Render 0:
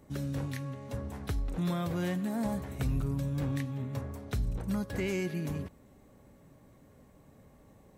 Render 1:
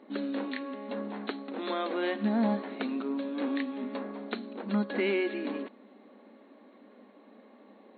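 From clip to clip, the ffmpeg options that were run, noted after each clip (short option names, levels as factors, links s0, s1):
-af "afftfilt=real='re*between(b*sr/4096,200,4400)':imag='im*between(b*sr/4096,200,4400)':win_size=4096:overlap=0.75,volume=2"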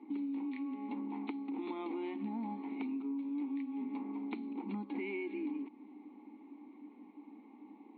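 -filter_complex "[0:a]asplit=3[s0][s1][s2];[s0]bandpass=f=300:t=q:w=8,volume=1[s3];[s1]bandpass=f=870:t=q:w=8,volume=0.501[s4];[s2]bandpass=f=2240:t=q:w=8,volume=0.355[s5];[s3][s4][s5]amix=inputs=3:normalize=0,acompressor=threshold=0.00501:ratio=6,volume=2.99"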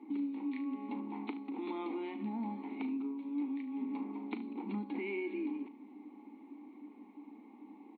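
-af "aecho=1:1:38|74:0.237|0.168,volume=1.12"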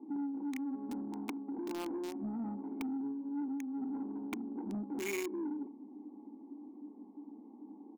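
-filter_complex "[0:a]acrossover=split=890[s0][s1];[s0]asoftclip=type=tanh:threshold=0.0168[s2];[s1]acrusher=bits=6:mix=0:aa=0.000001[s3];[s2][s3]amix=inputs=2:normalize=0,volume=1.33"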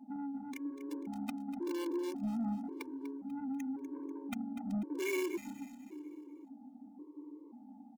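-filter_complex "[0:a]asplit=2[s0][s1];[s1]aecho=0:1:245|490|735|980|1225:0.251|0.113|0.0509|0.0229|0.0103[s2];[s0][s2]amix=inputs=2:normalize=0,afftfilt=real='re*gt(sin(2*PI*0.93*pts/sr)*(1-2*mod(floor(b*sr/1024/300),2)),0)':imag='im*gt(sin(2*PI*0.93*pts/sr)*(1-2*mod(floor(b*sr/1024/300),2)),0)':win_size=1024:overlap=0.75,volume=1.41"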